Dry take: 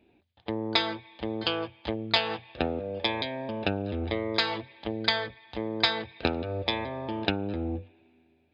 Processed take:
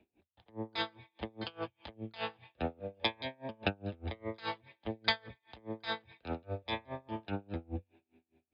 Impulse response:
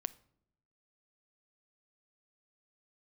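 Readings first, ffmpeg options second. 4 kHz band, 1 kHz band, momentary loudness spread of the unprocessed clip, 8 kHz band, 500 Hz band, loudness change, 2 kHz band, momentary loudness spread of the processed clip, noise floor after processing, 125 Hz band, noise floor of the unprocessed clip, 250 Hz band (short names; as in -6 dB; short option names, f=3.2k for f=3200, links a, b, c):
-11.0 dB, -8.0 dB, 9 LU, n/a, -10.0 dB, -9.5 dB, -8.5 dB, 10 LU, under -85 dBFS, -7.5 dB, -66 dBFS, -10.0 dB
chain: -filter_complex "[0:a]highshelf=f=5.4k:g=-10,acrossover=split=310|430|3000[a][b][c][d];[b]acompressor=threshold=-56dB:ratio=6[e];[a][e][c][d]amix=inputs=4:normalize=0,aeval=exprs='val(0)*pow(10,-29*(0.5-0.5*cos(2*PI*4.9*n/s))/20)':c=same,volume=-1dB"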